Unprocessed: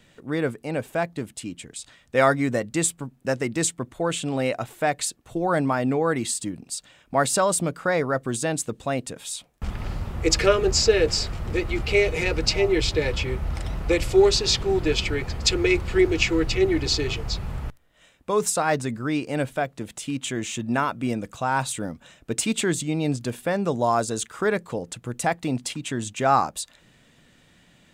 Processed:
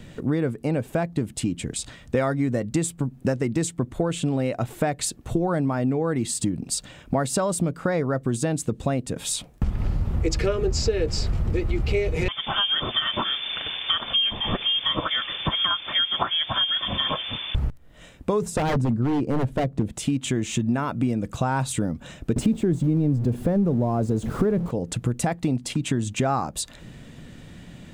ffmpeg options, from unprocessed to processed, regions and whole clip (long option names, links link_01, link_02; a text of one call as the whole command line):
ffmpeg -i in.wav -filter_complex "[0:a]asettb=1/sr,asplit=3[link_01][link_02][link_03];[link_01]atrim=end=12.284[link_04];[link_02]atrim=start=12.28:end=17.55,asetpts=PTS-STARTPTS,afade=type=in:duration=0.004:curve=qsin,afade=type=out:start_time=5.266:duration=0.004:curve=qsin,highpass=frequency=240:poles=1,lowpass=frequency=3100:width_type=q:width=0.5098,lowpass=frequency=3100:width_type=q:width=0.6013,lowpass=frequency=3100:width_type=q:width=0.9,lowpass=frequency=3100:width_type=q:width=2.563,afreqshift=-3600[link_05];[link_03]atrim=start=17.546[link_06];[link_04][link_05]acrossfade=duration=0.004:curve1=hsin:curve2=qsin[link_07];[link_07][link_06]acrossfade=duration=0.004:curve1=qsin:curve2=hsin,asettb=1/sr,asplit=3[link_08][link_09][link_10];[link_08]atrim=end=18.424[link_11];[link_09]atrim=start=18.42:end=19.93,asetpts=PTS-STARTPTS,afade=type=in:duration=0.004:curve=qsin,afade=type=out:start_time=1.506:duration=0.004:curve=qsin,tiltshelf=frequency=1100:gain=7,aeval=exprs='0.126*(abs(mod(val(0)/0.126+3,4)-2)-1)':channel_layout=same[link_12];[link_10]atrim=start=19.926[link_13];[link_11][link_12]acrossfade=duration=0.004:curve1=hsin:curve2=qsin[link_14];[link_14][link_13]acrossfade=duration=0.004:curve1=qsin:curve2=hsin,asettb=1/sr,asplit=3[link_15][link_16][link_17];[link_15]atrim=end=22.364[link_18];[link_16]atrim=start=22.36:end=24.71,asetpts=PTS-STARTPTS,afade=type=in:duration=0.004:curve=qsin,afade=type=out:start_time=2.346:duration=0.004:curve=qsin,aeval=exprs='val(0)+0.5*0.0398*sgn(val(0))':channel_layout=same,tiltshelf=frequency=920:gain=9[link_19];[link_17]atrim=start=24.706[link_20];[link_18][link_19]acrossfade=duration=0.004:curve1=hsin:curve2=qsin[link_21];[link_21][link_20]acrossfade=duration=0.004:curve1=qsin:curve2=hsin,lowshelf=frequency=440:gain=12,acompressor=threshold=-27dB:ratio=6,volume=6dB" out.wav